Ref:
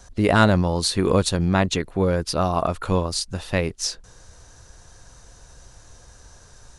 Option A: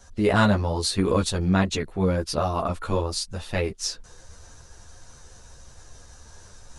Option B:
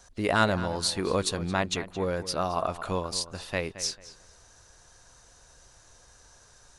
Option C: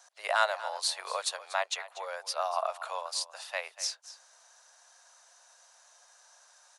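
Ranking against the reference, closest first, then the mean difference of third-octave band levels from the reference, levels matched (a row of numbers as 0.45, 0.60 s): A, B, C; 2.0, 4.0, 12.0 dB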